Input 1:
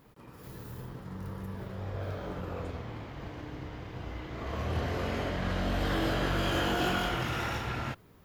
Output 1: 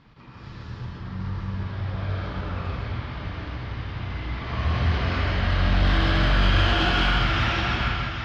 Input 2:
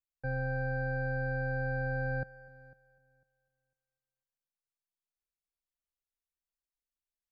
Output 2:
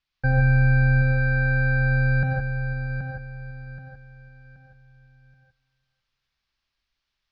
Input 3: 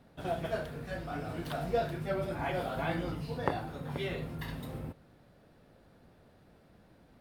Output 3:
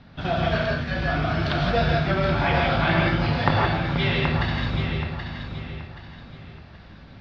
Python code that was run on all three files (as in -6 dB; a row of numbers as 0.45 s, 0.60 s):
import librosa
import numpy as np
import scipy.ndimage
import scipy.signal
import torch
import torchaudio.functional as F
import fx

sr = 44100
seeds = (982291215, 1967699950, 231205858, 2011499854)

p1 = scipy.signal.sosfilt(scipy.signal.butter(6, 5100.0, 'lowpass', fs=sr, output='sos'), x)
p2 = fx.peak_eq(p1, sr, hz=470.0, db=-11.0, octaves=1.6)
p3 = p2 + fx.echo_feedback(p2, sr, ms=777, feedback_pct=33, wet_db=-8, dry=0)
p4 = fx.rev_gated(p3, sr, seeds[0], gate_ms=190, shape='rising', drr_db=-0.5)
p5 = np.clip(p4, -10.0 ** (-25.0 / 20.0), 10.0 ** (-25.0 / 20.0))
p6 = p4 + F.gain(torch.from_numpy(p5), -10.0).numpy()
y = p6 * 10.0 ** (-24 / 20.0) / np.sqrt(np.mean(np.square(p6)))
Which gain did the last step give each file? +5.0 dB, +14.5 dB, +12.0 dB